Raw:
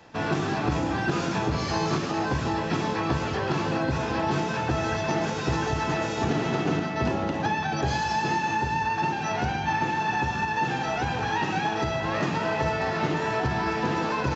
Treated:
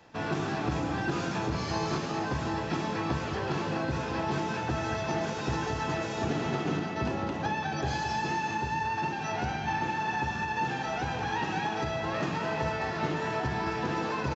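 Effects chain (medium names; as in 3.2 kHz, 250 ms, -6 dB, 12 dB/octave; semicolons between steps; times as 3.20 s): delay 216 ms -9.5 dB; trim -5 dB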